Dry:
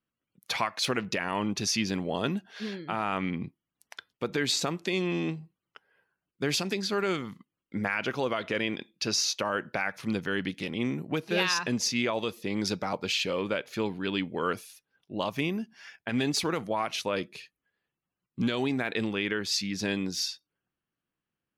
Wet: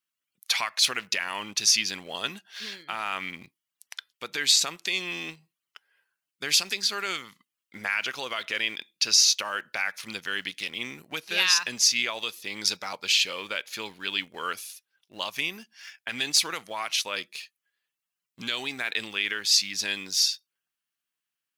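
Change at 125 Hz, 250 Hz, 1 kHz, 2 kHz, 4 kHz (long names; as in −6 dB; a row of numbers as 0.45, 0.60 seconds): −15.0, −13.0, −2.0, +4.0, +8.0 decibels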